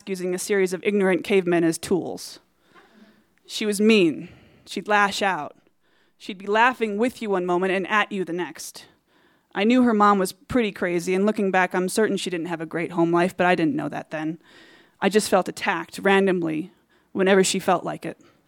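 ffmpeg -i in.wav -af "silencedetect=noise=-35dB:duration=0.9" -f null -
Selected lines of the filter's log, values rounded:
silence_start: 2.37
silence_end: 3.49 | silence_duration: 1.13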